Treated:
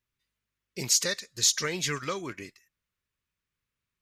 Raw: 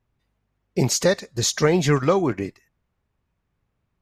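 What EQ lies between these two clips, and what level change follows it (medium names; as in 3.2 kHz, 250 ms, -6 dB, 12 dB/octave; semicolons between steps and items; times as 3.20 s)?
tilt shelf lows -9 dB, about 1.2 kHz; peaking EQ 770 Hz -11 dB 0.46 oct; -8.0 dB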